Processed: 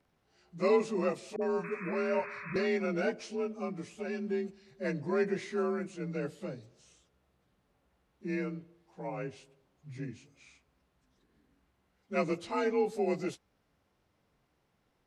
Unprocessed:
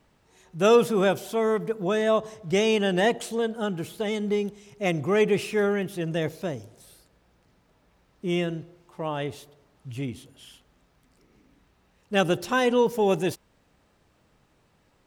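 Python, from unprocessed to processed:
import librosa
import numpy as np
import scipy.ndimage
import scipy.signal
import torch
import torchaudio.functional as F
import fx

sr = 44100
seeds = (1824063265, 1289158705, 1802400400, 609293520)

y = fx.partial_stretch(x, sr, pct=89)
y = fx.spec_paint(y, sr, seeds[0], shape='noise', start_s=1.58, length_s=1.09, low_hz=960.0, high_hz=2600.0, level_db=-37.0)
y = fx.dispersion(y, sr, late='highs', ms=55.0, hz=440.0, at=(1.36, 2.56))
y = F.gain(torch.from_numpy(y), -7.5).numpy()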